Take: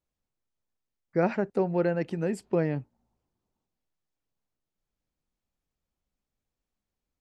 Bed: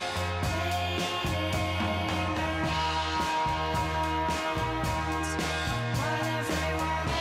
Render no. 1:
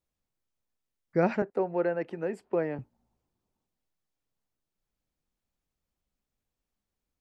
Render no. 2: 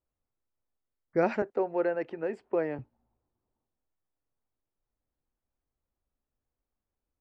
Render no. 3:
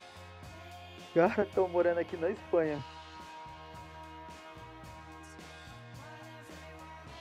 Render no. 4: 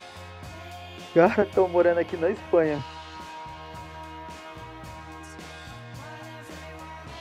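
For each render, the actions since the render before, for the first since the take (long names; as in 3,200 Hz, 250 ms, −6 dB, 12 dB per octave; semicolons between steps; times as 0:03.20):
0:01.42–0:02.79: three-way crossover with the lows and the highs turned down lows −13 dB, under 310 Hz, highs −13 dB, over 2,500 Hz
low-pass that shuts in the quiet parts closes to 1,400 Hz, open at −23.5 dBFS; parametric band 180 Hz −10 dB 0.35 octaves
mix in bed −19.5 dB
level +8 dB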